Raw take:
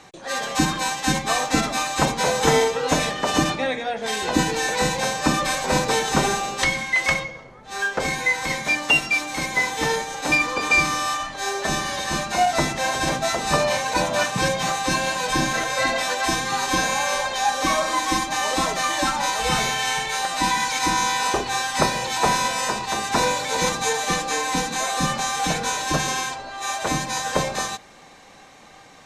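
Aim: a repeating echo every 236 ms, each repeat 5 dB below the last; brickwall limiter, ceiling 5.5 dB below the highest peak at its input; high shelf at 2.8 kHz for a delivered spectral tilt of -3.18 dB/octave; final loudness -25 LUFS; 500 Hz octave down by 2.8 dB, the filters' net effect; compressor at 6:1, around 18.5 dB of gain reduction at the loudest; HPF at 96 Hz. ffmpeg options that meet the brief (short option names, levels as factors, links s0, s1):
-af "highpass=96,equalizer=f=500:t=o:g=-3.5,highshelf=f=2800:g=4,acompressor=threshold=0.02:ratio=6,alimiter=level_in=1.33:limit=0.0631:level=0:latency=1,volume=0.75,aecho=1:1:236|472|708|944|1180|1416|1652:0.562|0.315|0.176|0.0988|0.0553|0.031|0.0173,volume=2.82"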